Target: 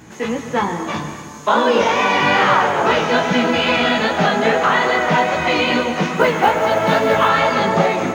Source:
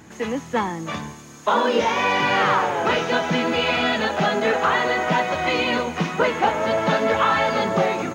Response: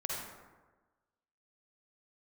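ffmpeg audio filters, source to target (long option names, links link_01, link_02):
-filter_complex "[0:a]flanger=delay=15.5:depth=5:speed=2.4,asettb=1/sr,asplit=3[link_01][link_02][link_03];[link_01]atrim=end=6.164[link_04];[link_02]atrim=start=6.16:end=7.29,asetpts=PTS-STARTPTS,afade=type=in:duration=0.004:curve=qsin,afade=type=out:start_time=1.126:duration=0.004:curve=qsin,acrusher=bits=8:mode=log:mix=0:aa=0.000001[link_05];[link_03]atrim=start=7.286[link_06];[link_04][link_05]acrossfade=duration=0.004:curve1=hsin:curve2=qsin[link_07];[link_07][link_06]acrossfade=duration=0.004:curve1=qsin:curve2=hsin,asplit=2[link_08][link_09];[1:a]atrim=start_sample=2205,adelay=146[link_10];[link_09][link_10]afir=irnorm=-1:irlink=0,volume=-11.5dB[link_11];[link_08][link_11]amix=inputs=2:normalize=0,volume=7dB"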